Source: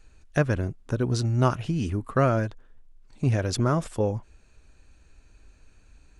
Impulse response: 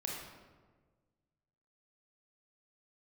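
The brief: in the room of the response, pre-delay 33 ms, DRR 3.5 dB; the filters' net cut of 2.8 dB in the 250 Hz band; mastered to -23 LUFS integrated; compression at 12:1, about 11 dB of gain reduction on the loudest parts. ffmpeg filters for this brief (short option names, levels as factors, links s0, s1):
-filter_complex "[0:a]equalizer=f=250:t=o:g=-4,acompressor=threshold=0.0398:ratio=12,asplit=2[s0][s1];[1:a]atrim=start_sample=2205,adelay=33[s2];[s1][s2]afir=irnorm=-1:irlink=0,volume=0.562[s3];[s0][s3]amix=inputs=2:normalize=0,volume=3.16"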